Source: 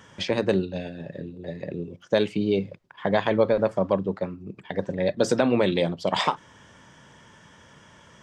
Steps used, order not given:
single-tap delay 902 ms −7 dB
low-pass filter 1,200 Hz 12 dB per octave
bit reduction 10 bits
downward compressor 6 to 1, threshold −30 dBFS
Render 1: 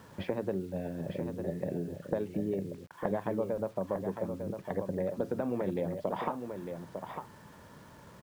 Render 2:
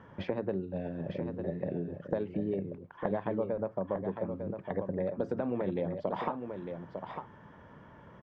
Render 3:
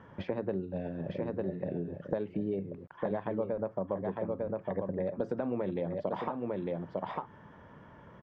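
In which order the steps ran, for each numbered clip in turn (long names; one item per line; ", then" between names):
low-pass filter, then downward compressor, then single-tap delay, then bit reduction
bit reduction, then low-pass filter, then downward compressor, then single-tap delay
single-tap delay, then bit reduction, then downward compressor, then low-pass filter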